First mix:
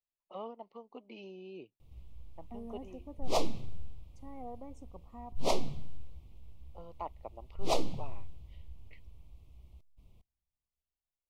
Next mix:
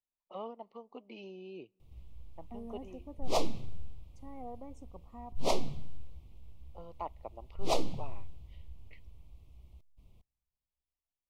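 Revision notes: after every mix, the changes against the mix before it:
first voice: send on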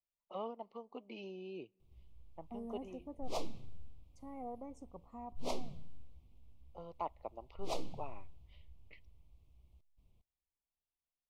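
background −9.5 dB
master: add notch filter 1,900 Hz, Q 24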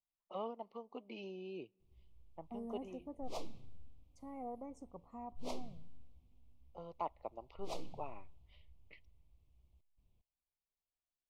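background −5.0 dB

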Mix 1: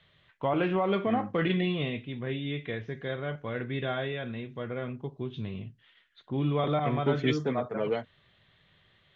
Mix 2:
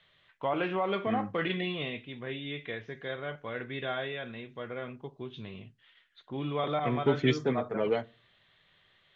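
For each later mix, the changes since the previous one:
first voice: add low-shelf EQ 300 Hz −10.5 dB
reverb: on, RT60 0.35 s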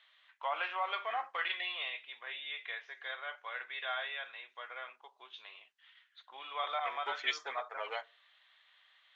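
master: add high-pass filter 800 Hz 24 dB per octave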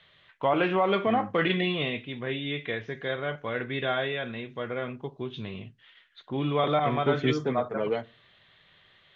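first voice +6.0 dB
master: remove high-pass filter 800 Hz 24 dB per octave

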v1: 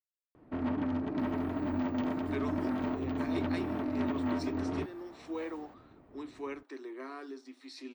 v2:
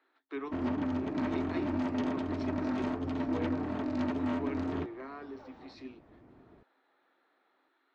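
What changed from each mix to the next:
speech: entry −2.00 s
first sound: remove high-frequency loss of the air 310 metres
master: add high-frequency loss of the air 200 metres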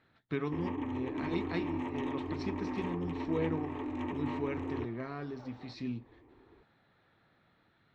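speech: remove Chebyshev high-pass with heavy ripple 260 Hz, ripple 6 dB
first sound: add phaser with its sweep stopped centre 960 Hz, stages 8

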